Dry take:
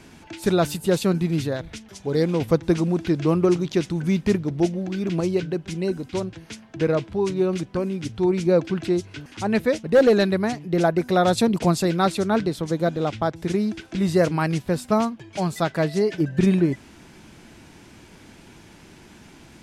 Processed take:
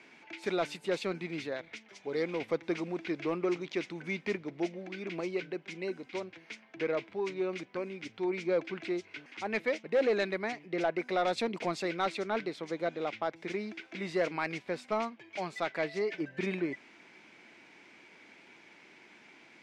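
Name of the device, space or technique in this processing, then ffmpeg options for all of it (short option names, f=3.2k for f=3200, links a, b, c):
intercom: -af "highpass=340,lowpass=4.9k,equalizer=f=2.2k:t=o:w=0.42:g=11,asoftclip=type=tanh:threshold=-11dB,volume=-8.5dB"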